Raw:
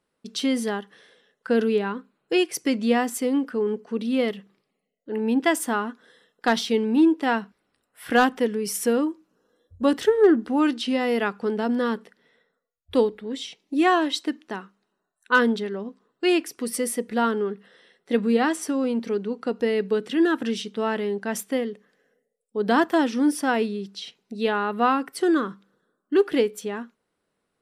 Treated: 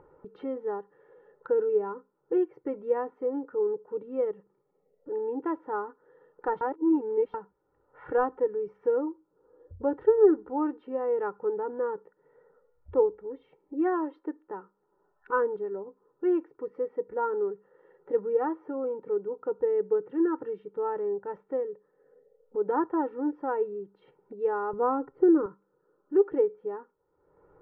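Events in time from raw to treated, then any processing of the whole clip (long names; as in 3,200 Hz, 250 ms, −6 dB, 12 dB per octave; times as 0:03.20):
0:06.61–0:07.34: reverse
0:24.73–0:25.46: spectral tilt −3.5 dB per octave
whole clip: low-pass filter 1,200 Hz 24 dB per octave; comb filter 2.2 ms, depth 93%; upward compression, threshold −31 dBFS; level −7.5 dB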